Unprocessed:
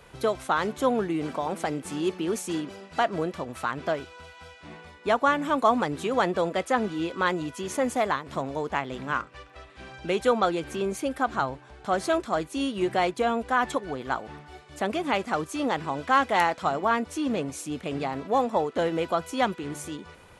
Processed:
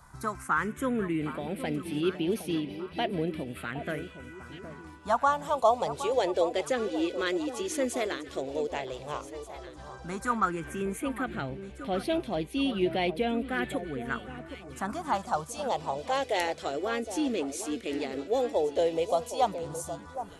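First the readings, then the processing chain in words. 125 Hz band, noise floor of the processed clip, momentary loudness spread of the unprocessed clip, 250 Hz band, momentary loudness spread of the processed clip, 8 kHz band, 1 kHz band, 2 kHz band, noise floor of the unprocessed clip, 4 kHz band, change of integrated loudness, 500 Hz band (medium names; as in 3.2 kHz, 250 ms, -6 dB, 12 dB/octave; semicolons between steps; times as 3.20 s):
-2.0 dB, -47 dBFS, 12 LU, -2.5 dB, 11 LU, -1.0 dB, -5.0 dB, -5.0 dB, -51 dBFS, -2.0 dB, -3.5 dB, -2.5 dB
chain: phase shifter stages 4, 0.1 Hz, lowest notch 150–1300 Hz; echo whose repeats swap between lows and highs 766 ms, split 1.2 kHz, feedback 57%, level -10.5 dB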